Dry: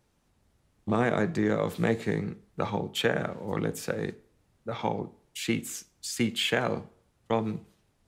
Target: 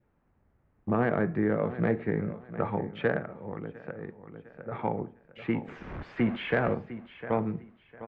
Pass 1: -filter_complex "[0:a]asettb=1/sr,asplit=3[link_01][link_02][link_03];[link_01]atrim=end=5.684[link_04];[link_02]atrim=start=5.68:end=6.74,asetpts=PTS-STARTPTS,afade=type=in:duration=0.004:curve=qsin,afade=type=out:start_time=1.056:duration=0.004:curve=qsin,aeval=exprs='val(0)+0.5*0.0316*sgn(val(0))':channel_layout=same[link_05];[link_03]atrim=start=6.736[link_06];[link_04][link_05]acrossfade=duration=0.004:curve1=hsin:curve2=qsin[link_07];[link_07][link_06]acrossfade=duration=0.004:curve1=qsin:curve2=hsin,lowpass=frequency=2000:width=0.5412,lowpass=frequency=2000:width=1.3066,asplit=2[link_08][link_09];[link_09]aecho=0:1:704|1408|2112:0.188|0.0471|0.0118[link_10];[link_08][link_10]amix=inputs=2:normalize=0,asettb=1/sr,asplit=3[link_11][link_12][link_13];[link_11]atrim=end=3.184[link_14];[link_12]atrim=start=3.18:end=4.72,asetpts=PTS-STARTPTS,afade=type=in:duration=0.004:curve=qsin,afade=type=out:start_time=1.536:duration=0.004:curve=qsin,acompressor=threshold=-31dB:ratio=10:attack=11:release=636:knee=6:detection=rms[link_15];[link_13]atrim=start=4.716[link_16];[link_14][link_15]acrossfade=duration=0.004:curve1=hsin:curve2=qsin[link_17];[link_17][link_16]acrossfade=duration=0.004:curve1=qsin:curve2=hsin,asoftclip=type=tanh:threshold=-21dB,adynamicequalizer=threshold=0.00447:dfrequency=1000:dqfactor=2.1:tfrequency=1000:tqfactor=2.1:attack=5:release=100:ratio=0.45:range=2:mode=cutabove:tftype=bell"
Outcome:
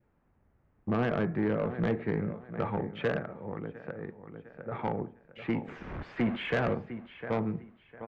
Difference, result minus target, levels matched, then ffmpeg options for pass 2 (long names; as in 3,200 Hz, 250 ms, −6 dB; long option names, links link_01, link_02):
soft clipping: distortion +15 dB
-filter_complex "[0:a]asettb=1/sr,asplit=3[link_01][link_02][link_03];[link_01]atrim=end=5.684[link_04];[link_02]atrim=start=5.68:end=6.74,asetpts=PTS-STARTPTS,afade=type=in:duration=0.004:curve=qsin,afade=type=out:start_time=1.056:duration=0.004:curve=qsin,aeval=exprs='val(0)+0.5*0.0316*sgn(val(0))':channel_layout=same[link_05];[link_03]atrim=start=6.736[link_06];[link_04][link_05]acrossfade=duration=0.004:curve1=hsin:curve2=qsin[link_07];[link_07][link_06]acrossfade=duration=0.004:curve1=qsin:curve2=hsin,lowpass=frequency=2000:width=0.5412,lowpass=frequency=2000:width=1.3066,asplit=2[link_08][link_09];[link_09]aecho=0:1:704|1408|2112:0.188|0.0471|0.0118[link_10];[link_08][link_10]amix=inputs=2:normalize=0,asettb=1/sr,asplit=3[link_11][link_12][link_13];[link_11]atrim=end=3.184[link_14];[link_12]atrim=start=3.18:end=4.72,asetpts=PTS-STARTPTS,afade=type=in:duration=0.004:curve=qsin,afade=type=out:start_time=1.536:duration=0.004:curve=qsin,acompressor=threshold=-31dB:ratio=10:attack=11:release=636:knee=6:detection=rms[link_15];[link_13]atrim=start=4.716[link_16];[link_14][link_15]acrossfade=duration=0.004:curve1=hsin:curve2=qsin[link_17];[link_17][link_16]acrossfade=duration=0.004:curve1=qsin:curve2=hsin,asoftclip=type=tanh:threshold=-10.5dB,adynamicequalizer=threshold=0.00447:dfrequency=1000:dqfactor=2.1:tfrequency=1000:tqfactor=2.1:attack=5:release=100:ratio=0.45:range=2:mode=cutabove:tftype=bell"